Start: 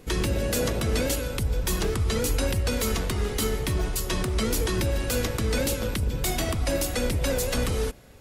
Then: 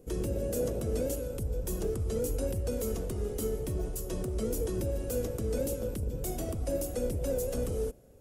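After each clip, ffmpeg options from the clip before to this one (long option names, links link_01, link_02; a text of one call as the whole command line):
ffmpeg -i in.wav -af "equalizer=frequency=500:width_type=o:width=1:gain=7,equalizer=frequency=1000:width_type=o:width=1:gain=-8,equalizer=frequency=2000:width_type=o:width=1:gain=-11,equalizer=frequency=4000:width_type=o:width=1:gain=-11,volume=-7.5dB" out.wav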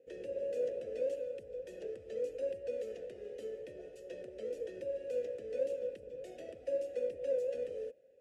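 ffmpeg -i in.wav -filter_complex "[0:a]asplit=3[link_01][link_02][link_03];[link_01]bandpass=frequency=530:width_type=q:width=8,volume=0dB[link_04];[link_02]bandpass=frequency=1840:width_type=q:width=8,volume=-6dB[link_05];[link_03]bandpass=frequency=2480:width_type=q:width=8,volume=-9dB[link_06];[link_04][link_05][link_06]amix=inputs=3:normalize=0,crystalizer=i=4.5:c=0,adynamicsmooth=sensitivity=6:basefreq=4700,volume=1dB" out.wav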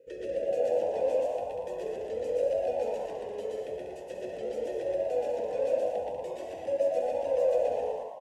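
ffmpeg -i in.wav -filter_complex "[0:a]asplit=2[link_01][link_02];[link_02]aecho=0:1:125.4|192.4:0.891|0.501[link_03];[link_01][link_03]amix=inputs=2:normalize=0,flanger=delay=2:depth=9.8:regen=-46:speed=0.4:shape=sinusoidal,asplit=2[link_04][link_05];[link_05]asplit=6[link_06][link_07][link_08][link_09][link_10][link_11];[link_06]adelay=114,afreqshift=91,volume=-7dB[link_12];[link_07]adelay=228,afreqshift=182,volume=-13dB[link_13];[link_08]adelay=342,afreqshift=273,volume=-19dB[link_14];[link_09]adelay=456,afreqshift=364,volume=-25.1dB[link_15];[link_10]adelay=570,afreqshift=455,volume=-31.1dB[link_16];[link_11]adelay=684,afreqshift=546,volume=-37.1dB[link_17];[link_12][link_13][link_14][link_15][link_16][link_17]amix=inputs=6:normalize=0[link_18];[link_04][link_18]amix=inputs=2:normalize=0,volume=8.5dB" out.wav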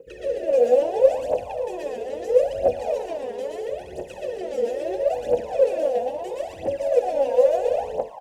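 ffmpeg -i in.wav -af "aphaser=in_gain=1:out_gain=1:delay=4.4:decay=0.78:speed=0.75:type=triangular,volume=3.5dB" out.wav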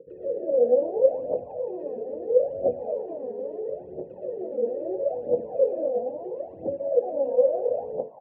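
ffmpeg -i in.wav -af "asuperpass=centerf=250:order=4:qfactor=0.62" out.wav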